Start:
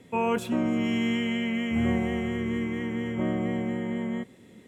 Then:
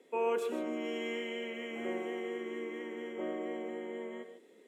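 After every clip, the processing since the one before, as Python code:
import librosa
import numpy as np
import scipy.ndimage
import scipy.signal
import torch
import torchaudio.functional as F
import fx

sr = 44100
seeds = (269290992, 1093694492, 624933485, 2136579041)

y = fx.ladder_highpass(x, sr, hz=340.0, resonance_pct=50)
y = fx.rev_gated(y, sr, seeds[0], gate_ms=170, shape='rising', drr_db=8.0)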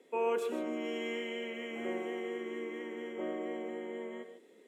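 y = x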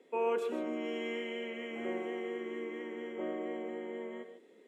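y = fx.high_shelf(x, sr, hz=6500.0, db=-9.5)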